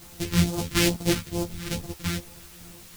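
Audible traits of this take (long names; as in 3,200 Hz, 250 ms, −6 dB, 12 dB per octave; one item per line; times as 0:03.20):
a buzz of ramps at a fixed pitch in blocks of 256 samples
phaser sweep stages 2, 2.3 Hz, lowest notch 640–1,900 Hz
a quantiser's noise floor 8 bits, dither triangular
a shimmering, thickened sound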